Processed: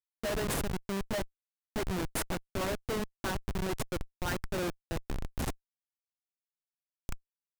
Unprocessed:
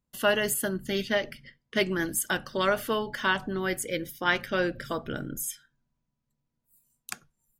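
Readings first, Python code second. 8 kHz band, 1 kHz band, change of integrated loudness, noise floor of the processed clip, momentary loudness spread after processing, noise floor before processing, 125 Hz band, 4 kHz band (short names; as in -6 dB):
-7.5 dB, -7.5 dB, -7.5 dB, under -85 dBFS, 12 LU, -82 dBFS, +0.5 dB, -9.0 dB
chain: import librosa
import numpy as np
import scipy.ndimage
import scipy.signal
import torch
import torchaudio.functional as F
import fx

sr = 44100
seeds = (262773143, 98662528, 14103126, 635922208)

y = fx.filter_lfo_notch(x, sr, shape='saw_up', hz=4.9, low_hz=860.0, high_hz=5100.0, q=1.4)
y = fx.schmitt(y, sr, flips_db=-26.5)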